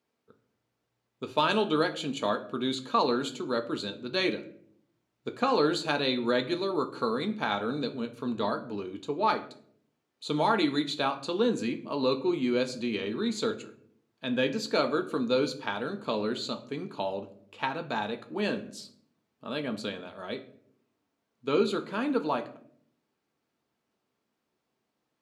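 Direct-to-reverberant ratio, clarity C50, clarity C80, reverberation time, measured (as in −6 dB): 6.0 dB, 14.5 dB, 17.0 dB, 0.60 s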